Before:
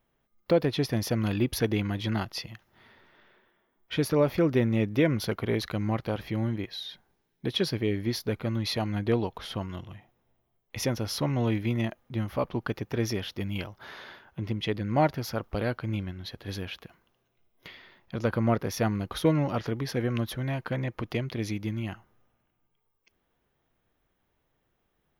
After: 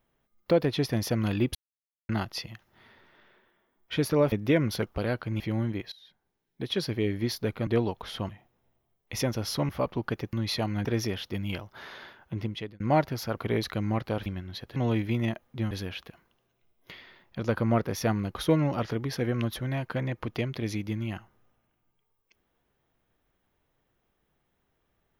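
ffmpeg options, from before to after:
ffmpeg -i in.wav -filter_complex "[0:a]asplit=17[link_01][link_02][link_03][link_04][link_05][link_06][link_07][link_08][link_09][link_10][link_11][link_12][link_13][link_14][link_15][link_16][link_17];[link_01]atrim=end=1.55,asetpts=PTS-STARTPTS,afade=type=out:start_time=1.546:duration=0.004:curve=hsin[link_18];[link_02]atrim=start=1.55:end=2.09,asetpts=PTS-STARTPTS,volume=0[link_19];[link_03]atrim=start=2.09:end=4.322,asetpts=PTS-STARTPTS,afade=type=in:duration=0.004:curve=hsin[link_20];[link_04]atrim=start=4.808:end=5.352[link_21];[link_05]atrim=start=15.428:end=15.972[link_22];[link_06]atrim=start=6.238:end=6.76,asetpts=PTS-STARTPTS,afade=type=out:start_time=0.518:duration=0.004:curve=hsin:silence=0.1[link_23];[link_07]atrim=start=6.76:end=8.512,asetpts=PTS-STARTPTS,afade=type=in:duration=1.13:silence=0.1[link_24];[link_08]atrim=start=9.028:end=9.652[link_25];[link_09]atrim=start=9.918:end=11.322[link_26];[link_10]atrim=start=12.268:end=12.912[link_27];[link_11]atrim=start=8.508:end=9.032[link_28];[link_12]atrim=start=12.908:end=14.86,asetpts=PTS-STARTPTS,afade=type=out:start_time=1.552:duration=0.4[link_29];[link_13]atrim=start=14.86:end=15.432,asetpts=PTS-STARTPTS,afade=type=in:duration=0.004:curve=hsin[link_30];[link_14]atrim=start=5.348:end=6.242[link_31];[link_15]atrim=start=15.968:end=16.472[link_32];[link_16]atrim=start=11.318:end=12.272[link_33];[link_17]atrim=start=16.468[link_34];[link_18][link_19][link_20]concat=n=3:v=0:a=1[link_35];[link_35][link_21]acrossfade=duration=0.004:curve1=hsin:curve2=hsin[link_36];[link_36][link_22]acrossfade=duration=0.004:curve1=hsin:curve2=hsin[link_37];[link_23][link_24]concat=n=2:v=0:a=1[link_38];[link_37][link_38]acrossfade=duration=0.004:curve1=hsin:curve2=hsin[link_39];[link_39][link_25]acrossfade=duration=0.004:curve1=hsin:curve2=hsin[link_40];[link_40][link_26]acrossfade=duration=0.004:curve1=hsin:curve2=hsin[link_41];[link_41][link_27]acrossfade=duration=0.004:curve1=hsin:curve2=hsin[link_42];[link_42][link_28]acrossfade=duration=0.004:curve1=hsin:curve2=hsin[link_43];[link_29][link_30]concat=n=2:v=0:a=1[link_44];[link_43][link_44]acrossfade=duration=0.004:curve1=hsin:curve2=hsin[link_45];[link_45][link_31]acrossfade=duration=0.004:curve1=hsin:curve2=hsin[link_46];[link_46][link_32]acrossfade=duration=0.004:curve1=hsin:curve2=hsin[link_47];[link_47][link_33]acrossfade=duration=0.004:curve1=hsin:curve2=hsin[link_48];[link_48][link_34]acrossfade=duration=0.004:curve1=hsin:curve2=hsin" out.wav

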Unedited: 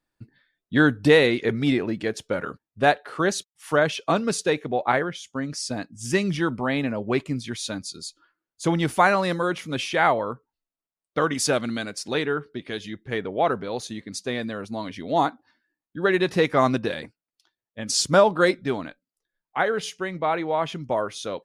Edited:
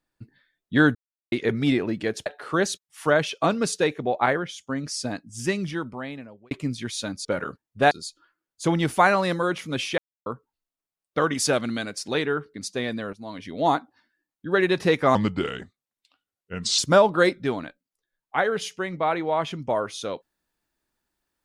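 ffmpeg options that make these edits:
ffmpeg -i in.wav -filter_complex "[0:a]asplit=13[link_01][link_02][link_03][link_04][link_05][link_06][link_07][link_08][link_09][link_10][link_11][link_12][link_13];[link_01]atrim=end=0.95,asetpts=PTS-STARTPTS,afade=type=out:start_time=0.946:duration=0.004:curve=hsin[link_14];[link_02]atrim=start=0.95:end=1.32,asetpts=PTS-STARTPTS,volume=0[link_15];[link_03]atrim=start=1.32:end=2.262,asetpts=PTS-STARTPTS,afade=type=in:duration=0.004:curve=hsin[link_16];[link_04]atrim=start=2.918:end=7.17,asetpts=PTS-STARTPTS,afade=type=out:start_time=2.852:duration=1.4[link_17];[link_05]atrim=start=7.17:end=7.912,asetpts=PTS-STARTPTS,afade=type=in:duration=0.004:curve=hsin[link_18];[link_06]atrim=start=2.258:end=2.922[link_19];[link_07]atrim=start=7.908:end=9.98,asetpts=PTS-STARTPTS,afade=type=out:start_time=2.068:duration=0.004:curve=hsin[link_20];[link_08]atrim=start=9.98:end=10.26,asetpts=PTS-STARTPTS,volume=0[link_21];[link_09]atrim=start=10.26:end=12.542,asetpts=PTS-STARTPTS,afade=type=in:duration=0.004:curve=hsin[link_22];[link_10]atrim=start=14.048:end=14.64,asetpts=PTS-STARTPTS,afade=type=out:start_time=0.588:duration=0.004:curve=hsin:silence=0.211349[link_23];[link_11]atrim=start=14.64:end=16.664,asetpts=PTS-STARTPTS,afade=type=in:duration=0.6:curve=qsin:silence=0.211349[link_24];[link_12]atrim=start=16.66:end=18,asetpts=PTS-STARTPTS,asetrate=36162,aresample=44100[link_25];[link_13]atrim=start=17.996[link_26];[link_14][link_15][link_16]concat=n=3:v=0:a=1[link_27];[link_17][link_18]concat=n=2:v=0:a=1[link_28];[link_27][link_28]acrossfade=duration=0.004:curve1=hsin:curve2=hsin[link_29];[link_29][link_19]acrossfade=duration=0.004:curve1=hsin:curve2=hsin[link_30];[link_20][link_21][link_22]concat=n=3:v=0:a=1[link_31];[link_30][link_31]acrossfade=duration=0.004:curve1=hsin:curve2=hsin[link_32];[link_23][link_24]concat=n=2:v=0:a=1[link_33];[link_32][link_33]acrossfade=duration=0.004:curve1=hsin:curve2=hsin[link_34];[link_34][link_25]acrossfade=duration=0.004:curve1=hsin:curve2=hsin[link_35];[link_35][link_26]acrossfade=duration=0.004:curve1=hsin:curve2=hsin" out.wav

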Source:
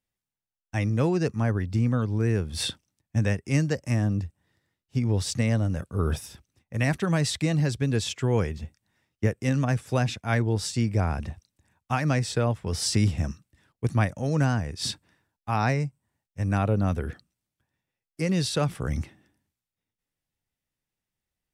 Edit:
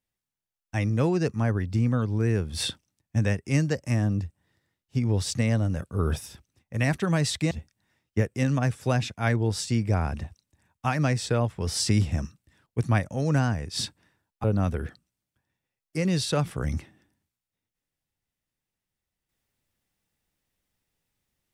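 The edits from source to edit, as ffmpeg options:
ffmpeg -i in.wav -filter_complex "[0:a]asplit=3[link_01][link_02][link_03];[link_01]atrim=end=7.512[link_04];[link_02]atrim=start=8.568:end=15.502[link_05];[link_03]atrim=start=16.678[link_06];[link_04][link_05]acrossfade=duration=0.004:curve1=hsin:curve2=hsin[link_07];[link_07][link_06]acrossfade=duration=0.004:curve1=hsin:curve2=hsin" out.wav

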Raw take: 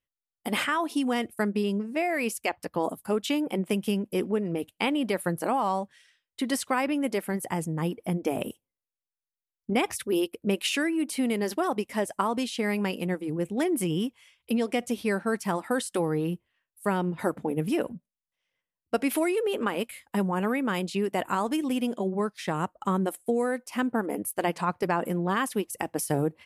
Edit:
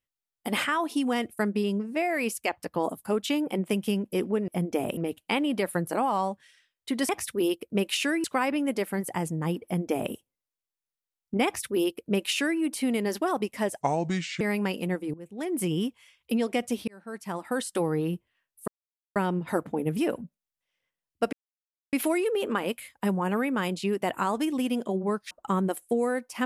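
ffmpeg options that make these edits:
ffmpeg -i in.wav -filter_complex "[0:a]asplit=12[link_01][link_02][link_03][link_04][link_05][link_06][link_07][link_08][link_09][link_10][link_11][link_12];[link_01]atrim=end=4.482[link_13];[link_02]atrim=start=7.998:end=8.492[link_14];[link_03]atrim=start=4.478:end=6.602[link_15];[link_04]atrim=start=9.808:end=10.962[link_16];[link_05]atrim=start=6.598:end=12.174[link_17];[link_06]atrim=start=12.17:end=12.6,asetpts=PTS-STARTPTS,asetrate=31752,aresample=44100[link_18];[link_07]atrim=start=12.596:end=13.33,asetpts=PTS-STARTPTS,afade=type=out:start_time=0.73:duration=0.004:curve=hsin:silence=0.16788[link_19];[link_08]atrim=start=13.33:end=15.07,asetpts=PTS-STARTPTS,afade=type=in:duration=0.49:curve=qua:silence=0.16788,afade=type=out:start_time=1.736:duration=0.004:curve=hsin[link_20];[link_09]atrim=start=15.07:end=16.87,asetpts=PTS-STARTPTS,afade=type=in:duration=0.85,afade=type=out:start_time=1.796:duration=0.004:curve=hsin,apad=pad_dur=0.48[link_21];[link_10]atrim=start=16.87:end=19.04,asetpts=PTS-STARTPTS,afade=type=in:duration=0.004:curve=hsin,afade=type=out:start_time=2.166:duration=0.004:curve=hsin,apad=pad_dur=0.6[link_22];[link_11]atrim=start=19.04:end=22.422,asetpts=PTS-STARTPTS,afade=type=in:duration=0.004:curve=hsin[link_23];[link_12]atrim=start=22.678[link_24];[link_13][link_14]acrossfade=duration=0.004:curve1=hsin:curve2=hsin[link_25];[link_25][link_15]acrossfade=duration=0.004:curve1=hsin:curve2=hsin[link_26];[link_26][link_16]acrossfade=duration=0.004:curve1=hsin:curve2=hsin[link_27];[link_27][link_17]acrossfade=duration=0.004:curve1=hsin:curve2=hsin[link_28];[link_28][link_18]acrossfade=duration=0.004:curve1=hsin:curve2=hsin[link_29];[link_19][link_20][link_21][link_22][link_23]concat=n=5:v=0:a=1[link_30];[link_29][link_30]acrossfade=duration=0.004:curve1=hsin:curve2=hsin[link_31];[link_31][link_24]acrossfade=duration=0.004:curve1=hsin:curve2=hsin" out.wav

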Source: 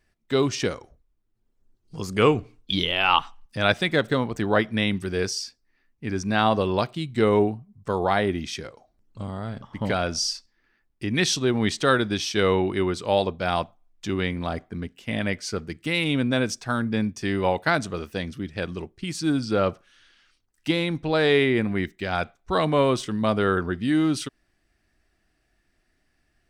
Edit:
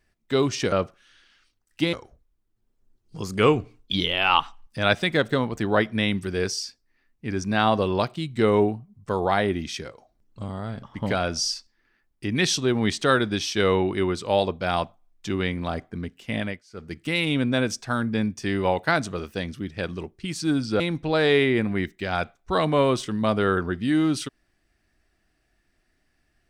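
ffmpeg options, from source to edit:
ffmpeg -i in.wav -filter_complex "[0:a]asplit=6[link_01][link_02][link_03][link_04][link_05][link_06];[link_01]atrim=end=0.722[link_07];[link_02]atrim=start=19.588:end=20.802[link_08];[link_03]atrim=start=0.718:end=15.42,asetpts=PTS-STARTPTS,afade=type=out:start_time=14.452:duration=0.25:silence=0.0707946[link_09];[link_04]atrim=start=15.42:end=15.49,asetpts=PTS-STARTPTS,volume=-23dB[link_10];[link_05]atrim=start=15.49:end=19.592,asetpts=PTS-STARTPTS,afade=type=in:duration=0.25:silence=0.0707946[link_11];[link_06]atrim=start=20.798[link_12];[link_07][link_08]acrossfade=duration=0.004:curve1=hsin:curve2=hsin[link_13];[link_09][link_10][link_11]concat=n=3:v=0:a=1[link_14];[link_13][link_14]acrossfade=duration=0.004:curve1=hsin:curve2=hsin[link_15];[link_15][link_12]acrossfade=duration=0.004:curve1=hsin:curve2=hsin" out.wav

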